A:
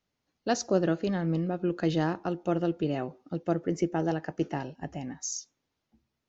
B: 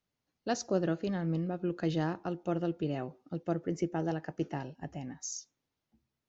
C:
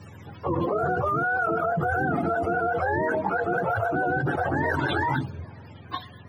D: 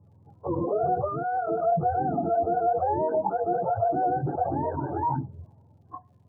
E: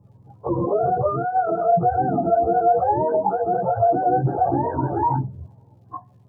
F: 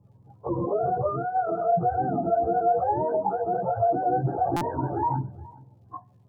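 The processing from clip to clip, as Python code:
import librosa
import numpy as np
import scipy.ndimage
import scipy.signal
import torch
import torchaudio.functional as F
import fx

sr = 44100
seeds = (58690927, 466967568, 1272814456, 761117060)

y1 = fx.peak_eq(x, sr, hz=130.0, db=3.0, octaves=0.79)
y1 = y1 * 10.0 ** (-5.0 / 20.0)
y2 = fx.octave_mirror(y1, sr, pivot_hz=490.0)
y2 = fx.env_flatten(y2, sr, amount_pct=100)
y2 = y2 * 10.0 ** (3.0 / 20.0)
y3 = fx.ladder_lowpass(y2, sr, hz=1100.0, resonance_pct=30)
y3 = fx.dmg_crackle(y3, sr, seeds[0], per_s=92.0, level_db=-43.0)
y3 = fx.spectral_expand(y3, sr, expansion=1.5)
y3 = y3 * 10.0 ** (4.5 / 20.0)
y4 = fx.chorus_voices(y3, sr, voices=4, hz=0.81, base_ms=16, depth_ms=1.3, mix_pct=40)
y4 = y4 * 10.0 ** (8.5 / 20.0)
y5 = y4 + 10.0 ** (-22.5 / 20.0) * np.pad(y4, (int(419 * sr / 1000.0), 0))[:len(y4)]
y5 = fx.buffer_glitch(y5, sr, at_s=(4.56,), block=256, repeats=8)
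y5 = y5 * 10.0 ** (-5.0 / 20.0)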